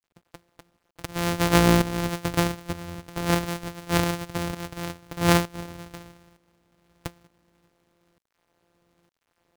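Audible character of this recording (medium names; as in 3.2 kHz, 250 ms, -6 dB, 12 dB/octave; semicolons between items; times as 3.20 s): a buzz of ramps at a fixed pitch in blocks of 256 samples; tremolo saw up 1.1 Hz, depth 75%; a quantiser's noise floor 12-bit, dither none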